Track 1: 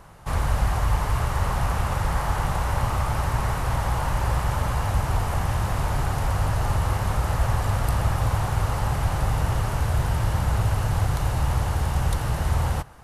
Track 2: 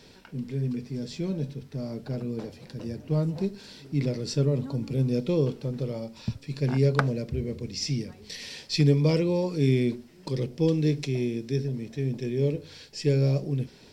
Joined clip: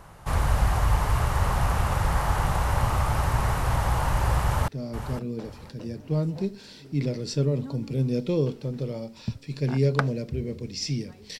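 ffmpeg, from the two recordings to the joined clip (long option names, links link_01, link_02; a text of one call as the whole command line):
ffmpeg -i cue0.wav -i cue1.wav -filter_complex "[0:a]apad=whole_dur=11.39,atrim=end=11.39,atrim=end=4.682[link_01];[1:a]atrim=start=1.678:end=8.39[link_02];[link_01][link_02]acrossfade=duration=0.004:curve1=hsin:curve2=hsin,asplit=2[link_03][link_04];[link_04]afade=type=in:start_time=4.42:duration=0.01,afade=type=out:start_time=4.68:duration=0.01,aecho=0:1:510|1020|1530:0.298538|0.0746346|0.0186586[link_05];[link_03][link_05]amix=inputs=2:normalize=0" out.wav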